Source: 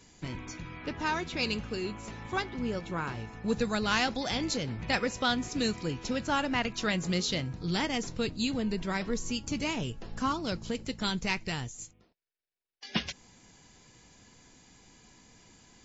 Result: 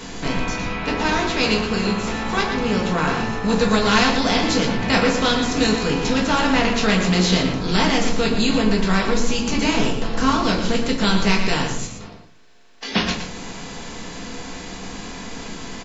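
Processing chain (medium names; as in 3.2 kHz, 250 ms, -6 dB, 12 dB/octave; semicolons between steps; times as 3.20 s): spectral levelling over time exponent 0.6; echo from a far wall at 20 m, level -7 dB; simulated room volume 190 m³, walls furnished, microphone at 1.6 m; trim +4 dB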